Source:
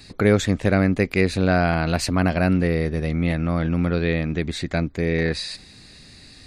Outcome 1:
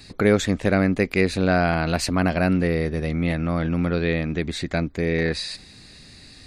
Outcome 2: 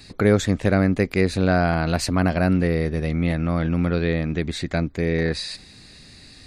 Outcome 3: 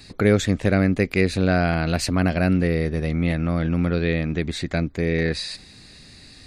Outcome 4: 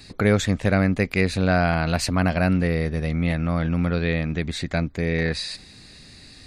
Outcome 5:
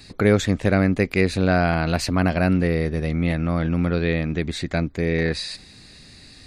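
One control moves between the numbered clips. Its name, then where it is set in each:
dynamic equaliser, frequency: 110, 2,600, 960, 350, 8,300 Hertz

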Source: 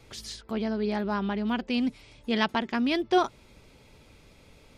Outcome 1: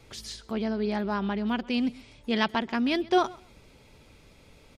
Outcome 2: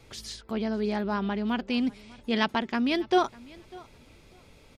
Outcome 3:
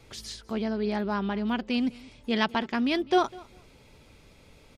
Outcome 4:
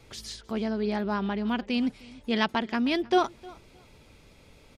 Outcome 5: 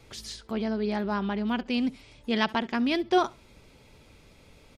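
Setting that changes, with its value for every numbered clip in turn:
repeating echo, delay time: 130, 598, 201, 309, 68 milliseconds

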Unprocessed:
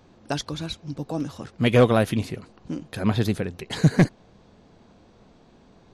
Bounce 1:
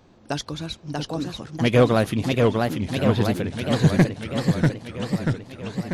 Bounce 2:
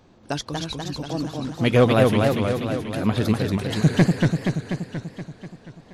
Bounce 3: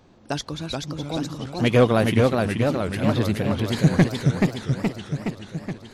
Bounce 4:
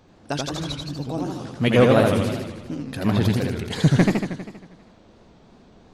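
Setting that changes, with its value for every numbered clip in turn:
feedback echo with a swinging delay time, delay time: 643, 240, 425, 80 milliseconds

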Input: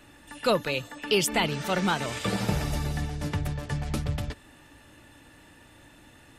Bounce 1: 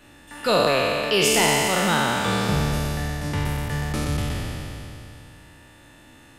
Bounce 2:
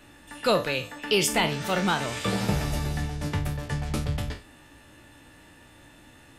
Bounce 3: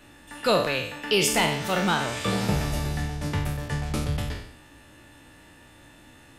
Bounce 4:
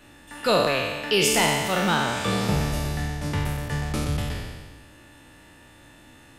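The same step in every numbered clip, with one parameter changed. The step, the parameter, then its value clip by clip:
peak hold with a decay on every bin, RT60: 3.05, 0.32, 0.67, 1.46 seconds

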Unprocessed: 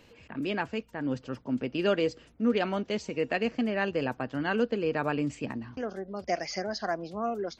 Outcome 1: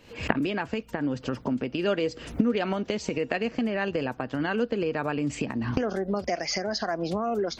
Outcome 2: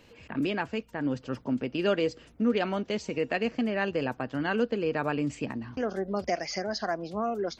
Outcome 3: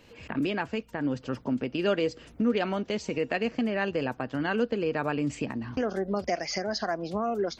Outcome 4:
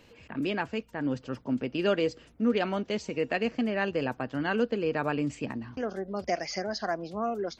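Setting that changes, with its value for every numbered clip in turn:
camcorder AGC, rising by: 90, 14, 36, 5.3 dB per second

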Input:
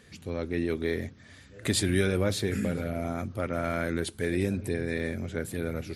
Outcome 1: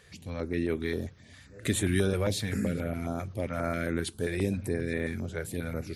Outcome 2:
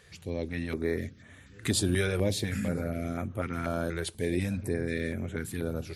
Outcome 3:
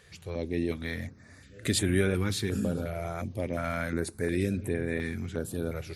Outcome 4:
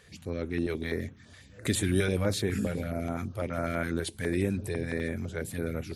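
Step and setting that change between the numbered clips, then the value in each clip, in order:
notch on a step sequencer, speed: 7.5, 4.1, 2.8, 12 Hertz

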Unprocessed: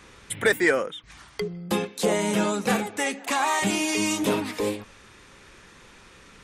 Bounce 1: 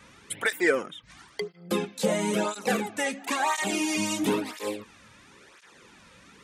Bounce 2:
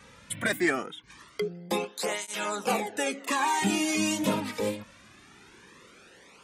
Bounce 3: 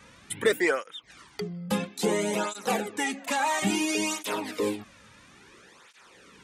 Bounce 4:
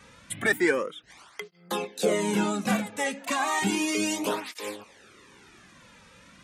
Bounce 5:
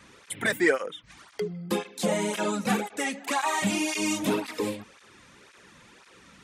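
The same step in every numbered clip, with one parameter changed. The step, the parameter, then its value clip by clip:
through-zero flanger with one copy inverted, nulls at: 0.98, 0.22, 0.59, 0.33, 1.9 Hertz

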